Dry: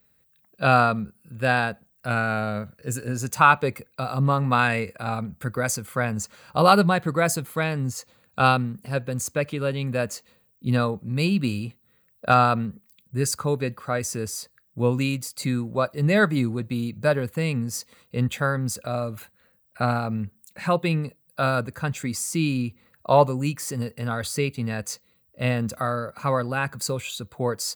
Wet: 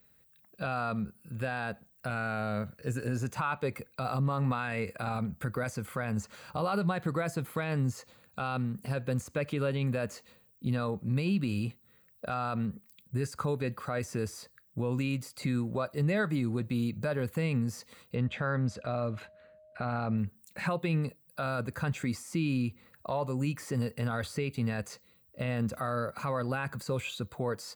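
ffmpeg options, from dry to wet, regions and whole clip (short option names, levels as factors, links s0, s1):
-filter_complex "[0:a]asettb=1/sr,asplit=3[s0][s1][s2];[s0]atrim=end=18.154[s3];[s1]atrim=start=18.15:end=20.18,asetpts=PTS-STARTPTS,afade=t=in:d=0.004:c=qsin,afade=t=out:st=2.026:d=0.004:c=qsin,lowpass=3700,aeval=exprs='val(0)+0.00178*sin(2*PI*620*n/s)':c=same[s4];[s2]atrim=start=20.176[s5];[s3][s4]acrossfade=d=0.004:c1=hsin:c2=qsin[s6];[s6][s5]acrossfade=d=0.004:c1=qsin:c2=hsin,acompressor=threshold=0.0501:ratio=2.5,alimiter=limit=0.0841:level=0:latency=1:release=27,acrossover=split=3000[s7][s8];[s8]acompressor=threshold=0.00501:ratio=4:attack=1:release=60[s9];[s7][s9]amix=inputs=2:normalize=0"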